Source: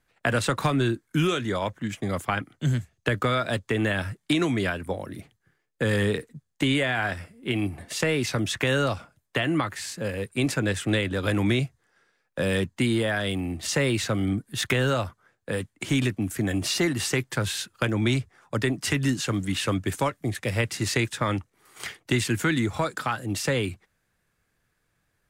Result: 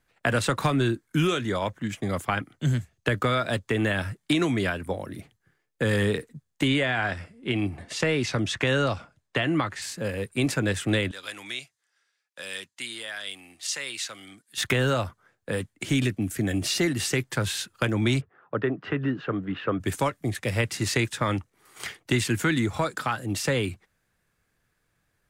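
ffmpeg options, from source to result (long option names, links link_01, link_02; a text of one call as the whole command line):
ffmpeg -i in.wav -filter_complex "[0:a]asettb=1/sr,asplit=3[link_01][link_02][link_03];[link_01]atrim=end=6.684[link_04];[link_02]atrim=start=6.68:end=9.82,asetpts=PTS-STARTPTS,afade=type=in:duration=0.004:curve=qsin,afade=type=out:start_time=3.136:duration=0.004:curve=qsin,lowpass=7200[link_05];[link_03]atrim=start=9.816[link_06];[link_04][link_05]acrossfade=duration=0.004:curve1=hsin:curve2=qsin[link_07];[link_07][link_06]acrossfade=duration=0.004:curve1=qsin:curve2=hsin,asettb=1/sr,asplit=3[link_08][link_09][link_10];[link_08]atrim=end=11.114[link_11];[link_09]atrim=start=11.11:end=14.58,asetpts=PTS-STARTPTS,afade=type=in:duration=0.004:curve=qsin,afade=type=out:start_time=3.466:duration=0.004:curve=qsin,bandpass=frequency=6000:width_type=q:width=0.59[link_12];[link_10]atrim=start=14.576[link_13];[link_11][link_12]acrossfade=duration=0.004:curve1=hsin:curve2=qsin[link_14];[link_14][link_13]acrossfade=duration=0.004:curve1=qsin:curve2=hsin,asettb=1/sr,asplit=3[link_15][link_16][link_17];[link_15]atrim=end=15.734[link_18];[link_16]atrim=start=15.73:end=17.2,asetpts=PTS-STARTPTS,afade=type=in:duration=0.004:curve=qsin,afade=type=out:start_time=1.466:duration=0.004:curve=qsin,equalizer=frequency=1000:width_type=o:width=0.77:gain=-5.5[link_19];[link_17]atrim=start=17.196[link_20];[link_18][link_19]acrossfade=duration=0.004:curve1=hsin:curve2=qsin[link_21];[link_21][link_20]acrossfade=duration=0.004:curve1=qsin:curve2=hsin,asplit=3[link_22][link_23][link_24];[link_22]afade=type=out:start_time=18.2:duration=0.02[link_25];[link_23]highpass=150,equalizer=frequency=230:width_type=q:width=4:gain=-4,equalizer=frequency=440:width_type=q:width=4:gain=4,equalizer=frequency=920:width_type=q:width=4:gain=-3,equalizer=frequency=1300:width_type=q:width=4:gain=3,equalizer=frequency=2200:width_type=q:width=4:gain=-9,lowpass=frequency=2400:width=0.5412,lowpass=frequency=2400:width=1.3066,afade=type=in:start_time=18.2:duration=0.02,afade=type=out:start_time=19.79:duration=0.02[link_26];[link_24]afade=type=in:start_time=19.79:duration=0.02[link_27];[link_25][link_26][link_27]amix=inputs=3:normalize=0" out.wav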